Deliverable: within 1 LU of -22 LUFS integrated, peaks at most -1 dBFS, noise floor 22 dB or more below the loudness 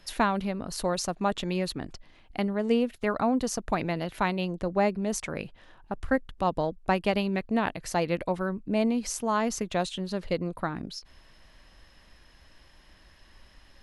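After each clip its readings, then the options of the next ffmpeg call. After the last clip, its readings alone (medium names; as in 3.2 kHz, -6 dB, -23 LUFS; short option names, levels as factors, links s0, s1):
loudness -29.0 LUFS; peak level -11.5 dBFS; loudness target -22.0 LUFS
-> -af "volume=2.24"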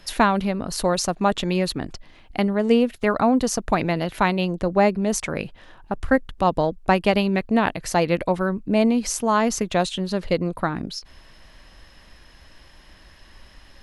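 loudness -22.0 LUFS; peak level -4.5 dBFS; noise floor -50 dBFS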